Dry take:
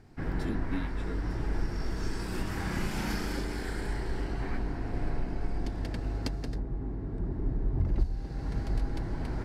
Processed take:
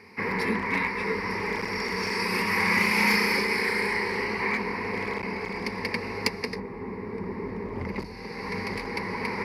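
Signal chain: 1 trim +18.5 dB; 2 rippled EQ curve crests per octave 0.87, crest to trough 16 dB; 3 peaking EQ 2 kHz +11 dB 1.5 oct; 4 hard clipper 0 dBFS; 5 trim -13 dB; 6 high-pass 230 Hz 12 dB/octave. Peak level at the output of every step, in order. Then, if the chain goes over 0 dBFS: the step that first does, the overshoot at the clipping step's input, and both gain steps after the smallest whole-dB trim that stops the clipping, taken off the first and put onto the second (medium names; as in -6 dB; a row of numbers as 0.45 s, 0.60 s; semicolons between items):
+3.0 dBFS, +7.5 dBFS, +7.5 dBFS, 0.0 dBFS, -13.0 dBFS, -9.5 dBFS; step 1, 7.5 dB; step 1 +10.5 dB, step 5 -5 dB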